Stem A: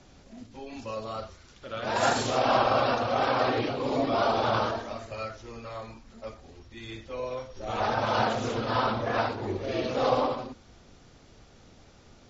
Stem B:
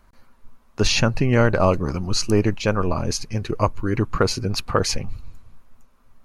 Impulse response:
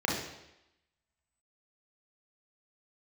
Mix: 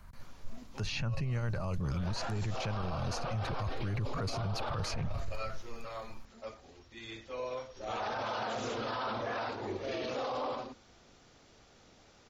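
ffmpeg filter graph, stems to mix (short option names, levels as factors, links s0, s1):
-filter_complex "[0:a]adelay=200,volume=0.75[s0];[1:a]lowshelf=f=210:t=q:w=1.5:g=11.5,volume=1.06[s1];[s0][s1]amix=inputs=2:normalize=0,lowshelf=f=270:g=-8.5,acrossover=split=83|4100[s2][s3][s4];[s2]acompressor=threshold=0.0631:ratio=4[s5];[s3]acompressor=threshold=0.1:ratio=4[s6];[s4]acompressor=threshold=0.00891:ratio=4[s7];[s5][s6][s7]amix=inputs=3:normalize=0,alimiter=level_in=1.58:limit=0.0631:level=0:latency=1:release=16,volume=0.631"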